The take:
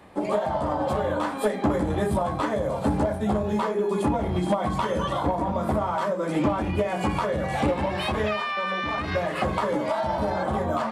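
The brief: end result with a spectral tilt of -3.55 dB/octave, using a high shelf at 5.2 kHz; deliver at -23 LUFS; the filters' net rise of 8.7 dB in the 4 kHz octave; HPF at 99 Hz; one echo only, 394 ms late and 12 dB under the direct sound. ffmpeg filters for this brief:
-af "highpass=99,equalizer=f=4000:t=o:g=8,highshelf=f=5200:g=8.5,aecho=1:1:394:0.251,volume=1.26"

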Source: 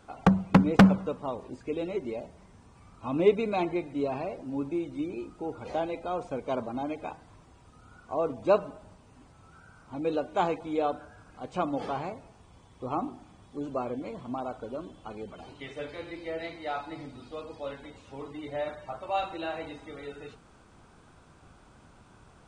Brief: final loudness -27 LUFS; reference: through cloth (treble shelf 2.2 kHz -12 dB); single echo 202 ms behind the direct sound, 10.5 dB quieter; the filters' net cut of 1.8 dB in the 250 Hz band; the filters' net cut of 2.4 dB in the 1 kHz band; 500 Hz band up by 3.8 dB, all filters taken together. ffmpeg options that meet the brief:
-af "equalizer=f=250:t=o:g=-4.5,equalizer=f=500:t=o:g=8,equalizer=f=1000:t=o:g=-5,highshelf=f=2200:g=-12,aecho=1:1:202:0.299,volume=1.33"

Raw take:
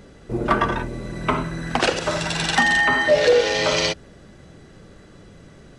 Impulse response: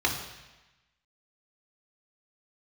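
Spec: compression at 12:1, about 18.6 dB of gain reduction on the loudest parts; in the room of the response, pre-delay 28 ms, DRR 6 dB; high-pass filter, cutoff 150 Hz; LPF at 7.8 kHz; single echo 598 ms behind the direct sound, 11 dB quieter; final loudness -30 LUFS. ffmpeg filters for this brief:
-filter_complex "[0:a]highpass=150,lowpass=7800,acompressor=threshold=0.0282:ratio=12,aecho=1:1:598:0.282,asplit=2[s0][s1];[1:a]atrim=start_sample=2205,adelay=28[s2];[s1][s2]afir=irnorm=-1:irlink=0,volume=0.126[s3];[s0][s3]amix=inputs=2:normalize=0,volume=1.5"

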